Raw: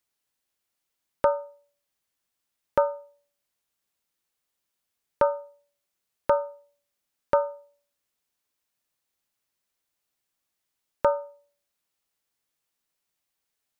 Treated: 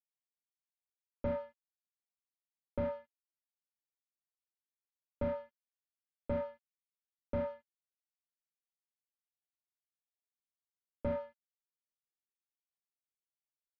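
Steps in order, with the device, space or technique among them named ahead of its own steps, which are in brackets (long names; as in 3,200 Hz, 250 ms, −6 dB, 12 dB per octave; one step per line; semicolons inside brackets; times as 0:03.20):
early transistor amplifier (dead-zone distortion −50 dBFS; slew-rate limiting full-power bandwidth 19 Hz)
high-frequency loss of the air 300 metres
level −2.5 dB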